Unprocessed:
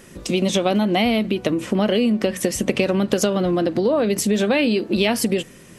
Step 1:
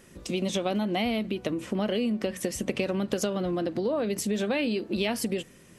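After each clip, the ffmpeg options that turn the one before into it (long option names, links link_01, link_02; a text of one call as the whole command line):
ffmpeg -i in.wav -af "equalizer=frequency=70:width=4.8:gain=5.5,volume=-9dB" out.wav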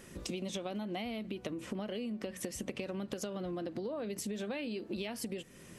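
ffmpeg -i in.wav -af "acompressor=threshold=-39dB:ratio=4,volume=1dB" out.wav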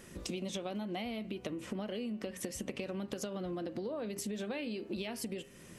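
ffmpeg -i in.wav -af "bandreject=frequency=134.3:width_type=h:width=4,bandreject=frequency=268.6:width_type=h:width=4,bandreject=frequency=402.9:width_type=h:width=4,bandreject=frequency=537.2:width_type=h:width=4,bandreject=frequency=671.5:width_type=h:width=4,bandreject=frequency=805.8:width_type=h:width=4,bandreject=frequency=940.1:width_type=h:width=4,bandreject=frequency=1074.4:width_type=h:width=4,bandreject=frequency=1208.7:width_type=h:width=4,bandreject=frequency=1343:width_type=h:width=4,bandreject=frequency=1477.3:width_type=h:width=4,bandreject=frequency=1611.6:width_type=h:width=4,bandreject=frequency=1745.9:width_type=h:width=4,bandreject=frequency=1880.2:width_type=h:width=4,bandreject=frequency=2014.5:width_type=h:width=4,bandreject=frequency=2148.8:width_type=h:width=4,bandreject=frequency=2283.1:width_type=h:width=4,bandreject=frequency=2417.4:width_type=h:width=4,bandreject=frequency=2551.7:width_type=h:width=4,bandreject=frequency=2686:width_type=h:width=4,bandreject=frequency=2820.3:width_type=h:width=4,bandreject=frequency=2954.6:width_type=h:width=4,bandreject=frequency=3088.9:width_type=h:width=4" out.wav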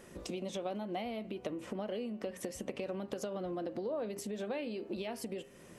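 ffmpeg -i in.wav -af "equalizer=frequency=650:width=0.63:gain=8,volume=-4.5dB" out.wav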